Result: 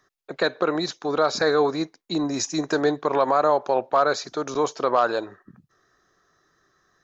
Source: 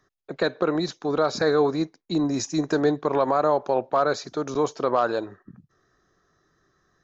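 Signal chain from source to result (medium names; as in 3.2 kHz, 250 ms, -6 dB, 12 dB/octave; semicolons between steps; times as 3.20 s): bass shelf 380 Hz -9 dB; trim +4 dB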